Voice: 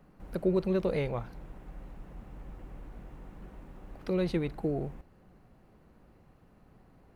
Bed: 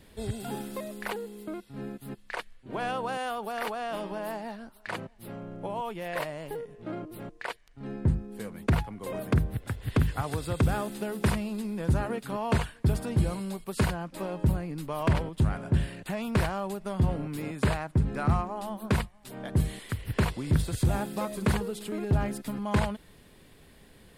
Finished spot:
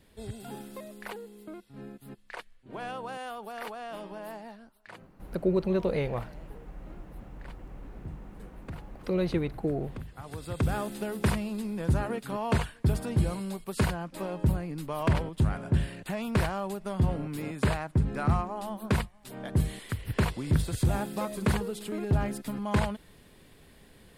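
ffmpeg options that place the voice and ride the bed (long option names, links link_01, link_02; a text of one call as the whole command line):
ffmpeg -i stem1.wav -i stem2.wav -filter_complex "[0:a]adelay=5000,volume=1.5dB[link_01];[1:a]volume=10dB,afade=type=out:start_time=4.4:duration=0.68:silence=0.298538,afade=type=in:start_time=10.13:duration=0.72:silence=0.158489[link_02];[link_01][link_02]amix=inputs=2:normalize=0" out.wav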